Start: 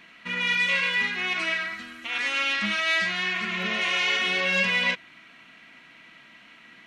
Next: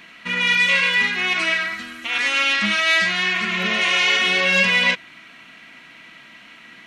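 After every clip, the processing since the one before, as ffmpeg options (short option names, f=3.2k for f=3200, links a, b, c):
-af "highshelf=f=5.8k:g=4.5,volume=6dB"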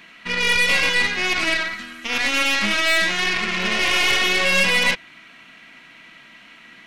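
-af "aeval=exprs='0.531*(cos(1*acos(clip(val(0)/0.531,-1,1)))-cos(1*PI/2))+0.075*(cos(6*acos(clip(val(0)/0.531,-1,1)))-cos(6*PI/2))':c=same,volume=-1.5dB"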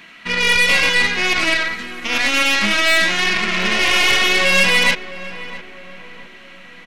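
-filter_complex "[0:a]asplit=2[a][b];[b]adelay=665,lowpass=f=1.5k:p=1,volume=-13.5dB,asplit=2[c][d];[d]adelay=665,lowpass=f=1.5k:p=1,volume=0.5,asplit=2[e][f];[f]adelay=665,lowpass=f=1.5k:p=1,volume=0.5,asplit=2[g][h];[h]adelay=665,lowpass=f=1.5k:p=1,volume=0.5,asplit=2[i][j];[j]adelay=665,lowpass=f=1.5k:p=1,volume=0.5[k];[a][c][e][g][i][k]amix=inputs=6:normalize=0,volume=3.5dB"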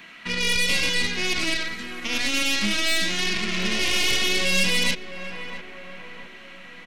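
-filter_complex "[0:a]acrossover=split=420|3000[a][b][c];[b]acompressor=threshold=-34dB:ratio=2.5[d];[a][d][c]amix=inputs=3:normalize=0,volume=-2.5dB"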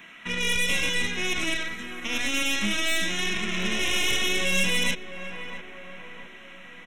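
-af "asuperstop=centerf=4600:order=4:qfactor=2.8,volume=-2dB"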